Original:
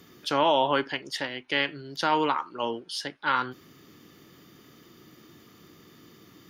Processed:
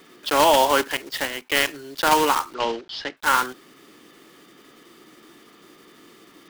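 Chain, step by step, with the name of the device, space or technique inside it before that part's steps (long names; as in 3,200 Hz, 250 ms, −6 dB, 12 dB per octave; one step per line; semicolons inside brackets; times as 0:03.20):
early digital voice recorder (band-pass filter 300–3,900 Hz; one scale factor per block 3 bits)
0:02.54–0:03.17: low-pass filter 5,300 Hz 24 dB per octave
level +6 dB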